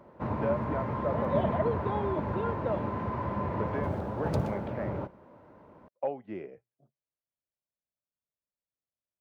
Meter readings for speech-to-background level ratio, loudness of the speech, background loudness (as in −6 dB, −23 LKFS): −3.0 dB, −36.0 LKFS, −33.0 LKFS